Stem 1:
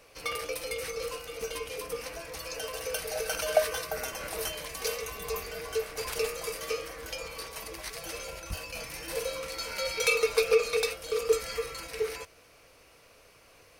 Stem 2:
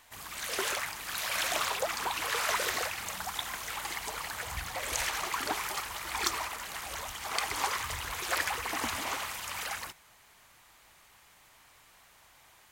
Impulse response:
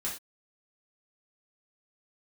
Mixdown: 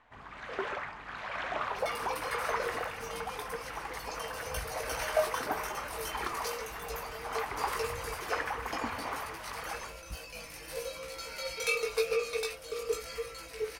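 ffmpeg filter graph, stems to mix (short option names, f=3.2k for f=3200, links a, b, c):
-filter_complex "[0:a]flanger=delay=17:depth=2.5:speed=0.94,adelay=1600,volume=-2.5dB[a];[1:a]lowpass=1.6k,volume=-1.5dB,asplit=2[b][c];[c]volume=-11dB[d];[2:a]atrim=start_sample=2205[e];[d][e]afir=irnorm=-1:irlink=0[f];[a][b][f]amix=inputs=3:normalize=0"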